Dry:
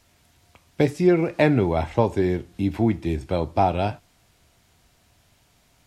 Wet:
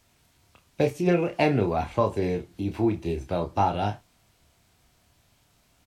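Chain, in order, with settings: formant shift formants +2 st; doubling 29 ms -7 dB; trim -4 dB

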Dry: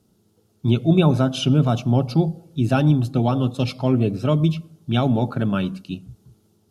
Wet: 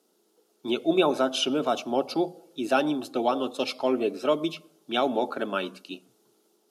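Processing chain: high-pass 330 Hz 24 dB/octave

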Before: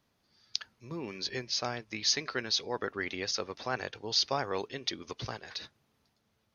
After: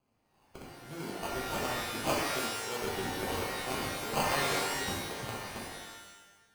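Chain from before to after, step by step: 2.15–2.78 s: steep low-pass 1.2 kHz 72 dB/octave; sample-and-hold 24×; pitch-shifted reverb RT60 1 s, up +12 st, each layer -2 dB, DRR -3.5 dB; trim -6 dB

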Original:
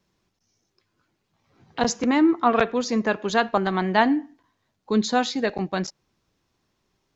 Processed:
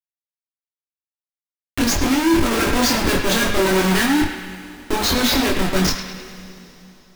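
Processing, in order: FFT filter 100 Hz 0 dB, 340 Hz +13 dB, 560 Hz +5 dB, 830 Hz -19 dB, 1.5 kHz +11 dB, 6.6 kHz +14 dB, 9.5 kHz -15 dB; Schmitt trigger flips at -24.5 dBFS; chorus voices 6, 0.4 Hz, delay 24 ms, depth 3.2 ms; 2.35–4.06 s: companded quantiser 4-bit; on a send: band-passed feedback delay 104 ms, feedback 67%, band-pass 2.2 kHz, level -6.5 dB; on the sum: two-slope reverb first 0.23 s, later 3.5 s, from -18 dB, DRR 6 dB

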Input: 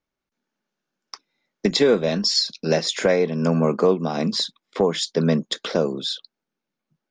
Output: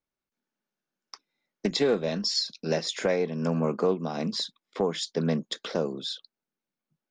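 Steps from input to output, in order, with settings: loudspeaker Doppler distortion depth 0.12 ms; trim -7 dB

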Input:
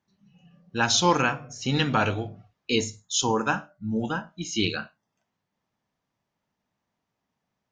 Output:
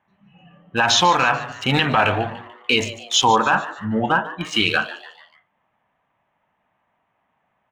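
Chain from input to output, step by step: local Wiener filter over 9 samples; high-order bell 1.4 kHz +11 dB 2.8 oct; band-stop 1.4 kHz, Q 21; peak limiter -11 dBFS, peak gain reduction 11.5 dB; frequency-shifting echo 146 ms, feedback 45%, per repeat +130 Hz, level -15.5 dB; trim +5 dB

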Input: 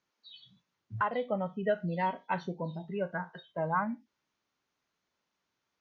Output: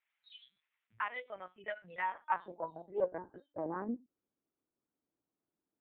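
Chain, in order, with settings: LPC vocoder at 8 kHz pitch kept; band-pass sweep 2.2 kHz -> 310 Hz, 1.82–3.38 s; loudspeaker Doppler distortion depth 0.32 ms; trim +4.5 dB

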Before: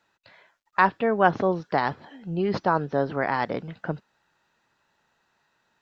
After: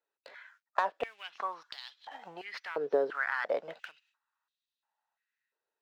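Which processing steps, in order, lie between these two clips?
gate with hold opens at -54 dBFS; waveshaping leveller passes 1; compression 6:1, threshold -32 dBFS, peak gain reduction 19 dB; step-sequenced high-pass 2.9 Hz 440–3600 Hz

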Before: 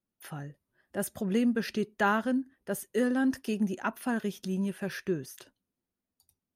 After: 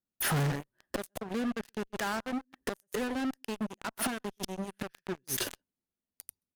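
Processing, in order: delay 128 ms -18 dB; inverted gate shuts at -30 dBFS, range -29 dB; in parallel at -8 dB: fuzz box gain 60 dB, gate -58 dBFS; on the sum: trim -6.5 dB

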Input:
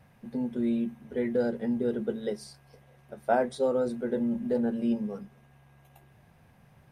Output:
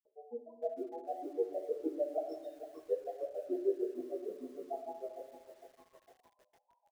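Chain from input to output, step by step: median filter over 25 samples; Bessel high-pass 670 Hz, order 8; high-order bell 1.4 kHz -12 dB 1.3 oct; reverse echo 521 ms -9 dB; loudest bins only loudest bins 4; comb 6.6 ms, depth 52%; peak limiter -32.5 dBFS, peak gain reduction 10 dB; granulator 95 ms, grains 6.6 per s, spray 177 ms, pitch spread up and down by 7 st; on a send at -5 dB: reverberation RT60 1.1 s, pre-delay 4 ms; on the sum: bit-crushed delay 455 ms, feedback 55%, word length 11-bit, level -11.5 dB; trim +9 dB

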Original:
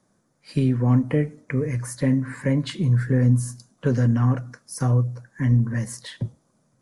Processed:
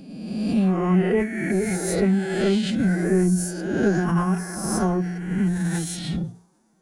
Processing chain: reverse spectral sustain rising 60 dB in 1.44 s; hum notches 60/120/180/240/300 Hz; formant-preserving pitch shift +6.5 st

